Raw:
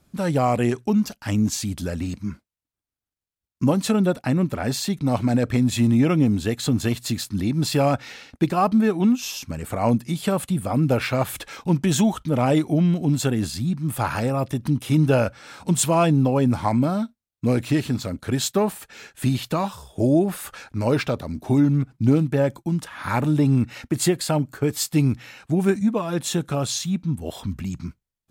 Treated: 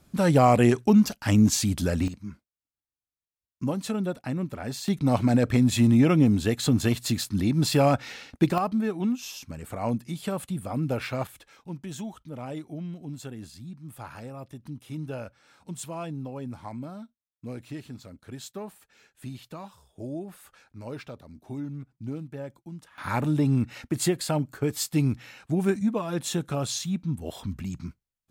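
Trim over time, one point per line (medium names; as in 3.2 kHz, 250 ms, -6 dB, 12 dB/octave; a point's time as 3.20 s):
+2 dB
from 2.08 s -9 dB
from 4.88 s -1 dB
from 8.58 s -8 dB
from 11.27 s -17 dB
from 22.98 s -4.5 dB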